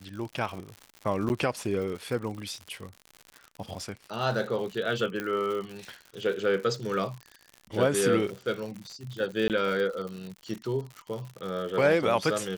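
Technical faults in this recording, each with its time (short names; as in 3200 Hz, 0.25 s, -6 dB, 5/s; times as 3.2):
crackle 110/s -35 dBFS
1.29–1.3 gap 9.9 ms
5.2 pop -18 dBFS
9.48–9.5 gap 18 ms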